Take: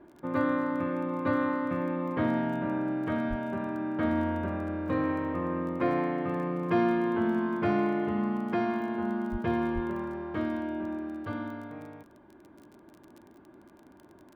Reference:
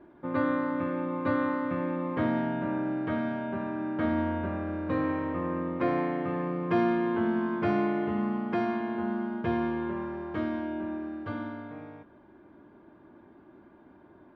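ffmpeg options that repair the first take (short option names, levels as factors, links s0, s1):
-filter_complex "[0:a]adeclick=t=4,asplit=3[s0][s1][s2];[s0]afade=t=out:st=3.29:d=0.02[s3];[s1]highpass=f=140:w=0.5412,highpass=f=140:w=1.3066,afade=t=in:st=3.29:d=0.02,afade=t=out:st=3.41:d=0.02[s4];[s2]afade=t=in:st=3.41:d=0.02[s5];[s3][s4][s5]amix=inputs=3:normalize=0,asplit=3[s6][s7][s8];[s6]afade=t=out:st=9.31:d=0.02[s9];[s7]highpass=f=140:w=0.5412,highpass=f=140:w=1.3066,afade=t=in:st=9.31:d=0.02,afade=t=out:st=9.43:d=0.02[s10];[s8]afade=t=in:st=9.43:d=0.02[s11];[s9][s10][s11]amix=inputs=3:normalize=0,asplit=3[s12][s13][s14];[s12]afade=t=out:st=9.74:d=0.02[s15];[s13]highpass=f=140:w=0.5412,highpass=f=140:w=1.3066,afade=t=in:st=9.74:d=0.02,afade=t=out:st=9.86:d=0.02[s16];[s14]afade=t=in:st=9.86:d=0.02[s17];[s15][s16][s17]amix=inputs=3:normalize=0"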